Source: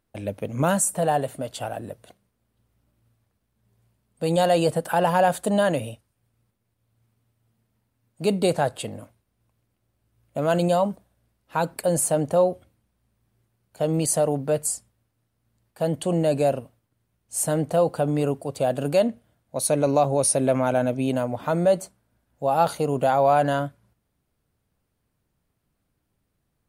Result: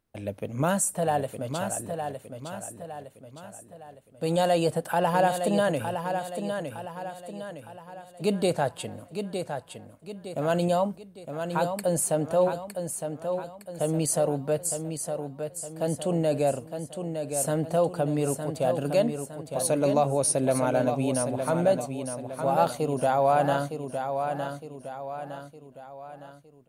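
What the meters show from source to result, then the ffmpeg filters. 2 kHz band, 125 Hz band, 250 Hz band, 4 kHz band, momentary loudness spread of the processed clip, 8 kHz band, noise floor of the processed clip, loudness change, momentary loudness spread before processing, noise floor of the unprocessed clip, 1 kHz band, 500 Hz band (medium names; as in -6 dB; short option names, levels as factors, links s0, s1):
-2.5 dB, -2.5 dB, -2.5 dB, -2.5 dB, 17 LU, -2.5 dB, -52 dBFS, -4.0 dB, 12 LU, -75 dBFS, -2.5 dB, -2.5 dB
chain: -af "aecho=1:1:911|1822|2733|3644|4555:0.447|0.201|0.0905|0.0407|0.0183,volume=0.668"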